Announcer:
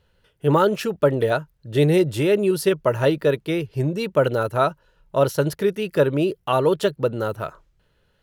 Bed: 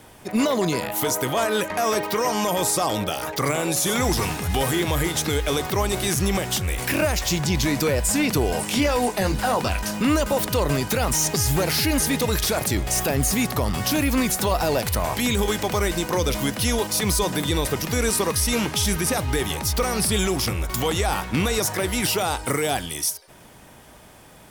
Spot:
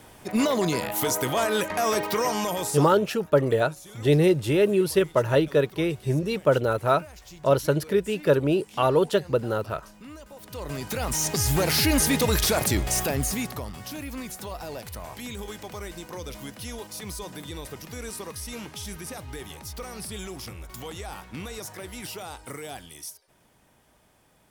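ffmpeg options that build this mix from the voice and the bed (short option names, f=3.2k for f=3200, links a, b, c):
-filter_complex "[0:a]adelay=2300,volume=-2dB[a];[1:a]volume=21.5dB,afade=t=out:st=2.21:d=0.89:silence=0.0841395,afade=t=in:st=10.4:d=1.42:silence=0.0668344,afade=t=out:st=12.64:d=1.09:silence=0.188365[b];[a][b]amix=inputs=2:normalize=0"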